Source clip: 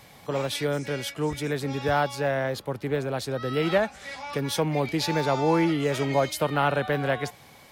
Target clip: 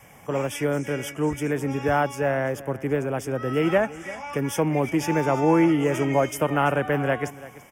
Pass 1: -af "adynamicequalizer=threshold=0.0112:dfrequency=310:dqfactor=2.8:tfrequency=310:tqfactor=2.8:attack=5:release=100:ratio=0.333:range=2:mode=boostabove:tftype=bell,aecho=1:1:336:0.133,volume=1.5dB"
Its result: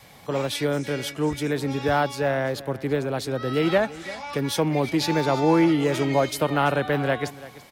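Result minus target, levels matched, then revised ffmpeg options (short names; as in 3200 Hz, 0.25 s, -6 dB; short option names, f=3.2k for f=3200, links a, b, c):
4000 Hz band +7.5 dB
-af "adynamicequalizer=threshold=0.0112:dfrequency=310:dqfactor=2.8:tfrequency=310:tqfactor=2.8:attack=5:release=100:ratio=0.333:range=2:mode=boostabove:tftype=bell,asuperstop=centerf=4100:order=4:qfactor=1.6,aecho=1:1:336:0.133,volume=1.5dB"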